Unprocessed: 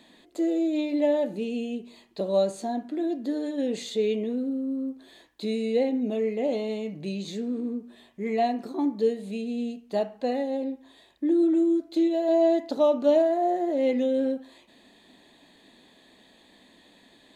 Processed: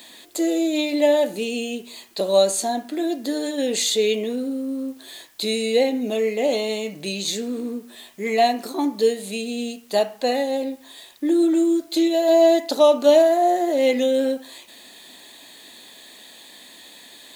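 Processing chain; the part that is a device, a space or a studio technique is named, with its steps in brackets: turntable without a phono preamp (RIAA curve recording; white noise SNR 36 dB); gain +8.5 dB

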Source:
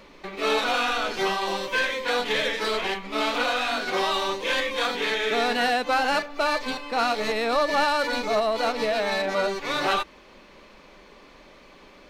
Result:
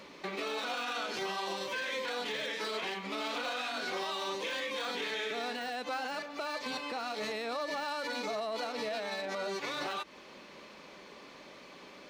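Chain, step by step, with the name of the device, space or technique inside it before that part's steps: broadcast voice chain (HPF 110 Hz 12 dB/oct; de-esser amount 70%; compressor 3:1, threshold -30 dBFS, peak gain reduction 9 dB; bell 5600 Hz +3 dB 1.6 oct; limiter -26 dBFS, peak gain reduction 7.5 dB); gain -1.5 dB

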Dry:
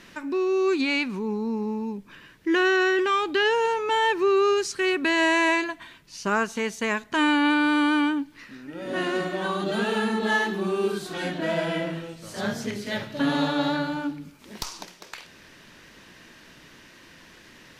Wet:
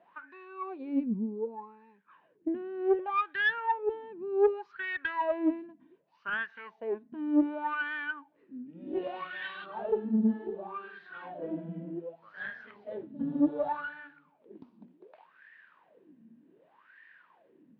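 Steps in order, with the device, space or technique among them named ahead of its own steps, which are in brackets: wah-wah guitar rig (wah 0.66 Hz 220–1800 Hz, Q 12; tube stage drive 24 dB, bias 0.5; speaker cabinet 77–3600 Hz, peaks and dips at 170 Hz +6 dB, 1300 Hz -4 dB, 2000 Hz -3 dB); 8.66–9.66 band shelf 3600 Hz +12.5 dB; gain +8 dB

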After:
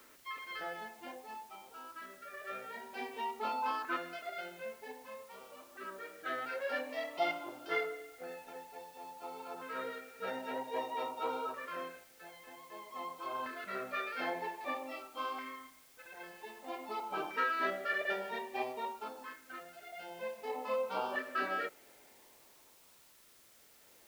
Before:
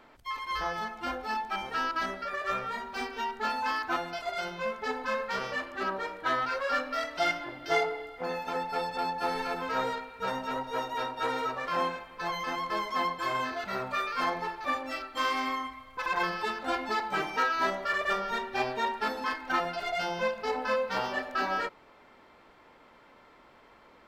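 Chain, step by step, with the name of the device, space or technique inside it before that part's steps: shortwave radio (BPF 280–2800 Hz; tremolo 0.28 Hz, depth 80%; LFO notch saw up 0.52 Hz 750–2000 Hz; white noise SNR 22 dB); gain -2 dB

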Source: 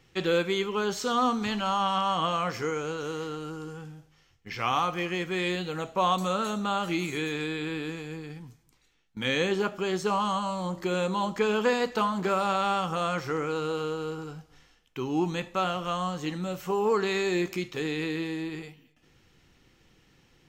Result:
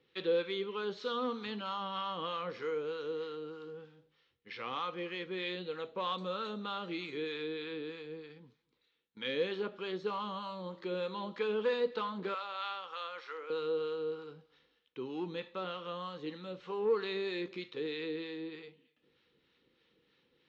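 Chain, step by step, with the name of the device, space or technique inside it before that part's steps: 12.34–13.5 HPF 860 Hz 12 dB/oct; bell 82 Hz -5 dB 1.3 oct; guitar amplifier with harmonic tremolo (harmonic tremolo 3.2 Hz, depth 50%, crossover 730 Hz; soft clip -18 dBFS, distortion -23 dB; speaker cabinet 97–4200 Hz, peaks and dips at 110 Hz -8 dB, 160 Hz -4 dB, 480 Hz +9 dB, 710 Hz -9 dB, 3800 Hz +8 dB); gain -7.5 dB

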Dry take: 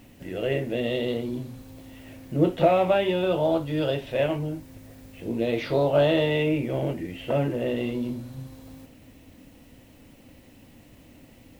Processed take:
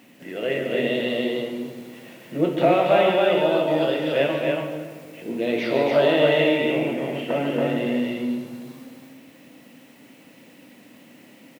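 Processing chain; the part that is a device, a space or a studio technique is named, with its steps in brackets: stadium PA (HPF 170 Hz 24 dB/oct; bell 2000 Hz +4.5 dB 1.4 oct; loudspeakers at several distances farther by 50 m -9 dB, 96 m -2 dB; reverb RT60 1.9 s, pre-delay 21 ms, DRR 6.5 dB)

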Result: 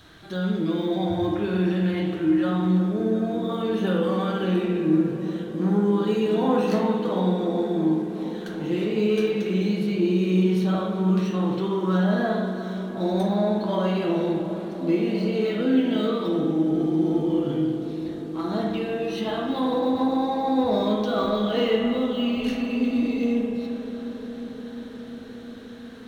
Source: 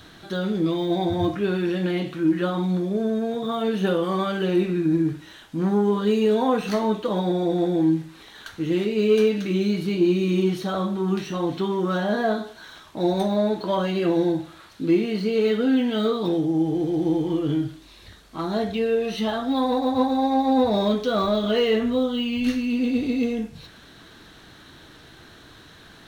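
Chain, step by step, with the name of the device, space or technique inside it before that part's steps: dub delay into a spring reverb (darkening echo 0.355 s, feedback 84%, low-pass 1900 Hz, level -12 dB; spring tank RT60 1.2 s, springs 38/54 ms, chirp 45 ms, DRR 0.5 dB); gain -4.5 dB

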